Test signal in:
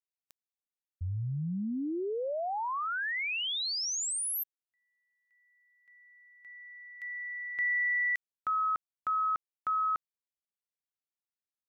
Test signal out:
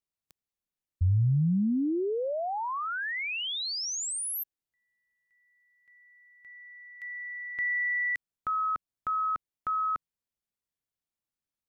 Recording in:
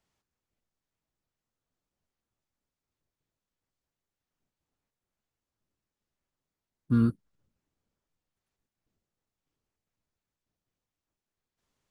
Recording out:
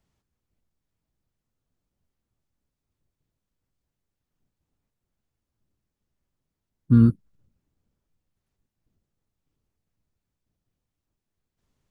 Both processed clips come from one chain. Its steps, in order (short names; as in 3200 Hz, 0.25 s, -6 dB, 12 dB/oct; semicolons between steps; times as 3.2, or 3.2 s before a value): low shelf 300 Hz +11.5 dB